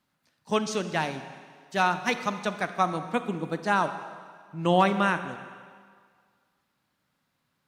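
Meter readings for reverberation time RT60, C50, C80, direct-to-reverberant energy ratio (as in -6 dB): 1.9 s, 10.5 dB, 11.5 dB, 10.0 dB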